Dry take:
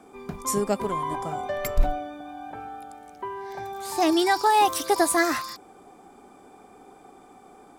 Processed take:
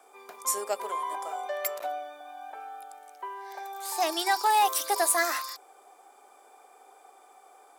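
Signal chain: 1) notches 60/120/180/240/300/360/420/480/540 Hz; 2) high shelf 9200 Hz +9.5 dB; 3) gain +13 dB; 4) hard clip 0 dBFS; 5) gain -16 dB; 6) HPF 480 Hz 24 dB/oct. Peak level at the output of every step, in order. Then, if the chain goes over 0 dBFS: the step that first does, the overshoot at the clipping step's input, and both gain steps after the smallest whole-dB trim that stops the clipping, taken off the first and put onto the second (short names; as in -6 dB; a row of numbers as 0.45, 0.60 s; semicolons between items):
-7.0, -7.0, +6.0, 0.0, -16.0, -12.5 dBFS; step 3, 6.0 dB; step 3 +7 dB, step 5 -10 dB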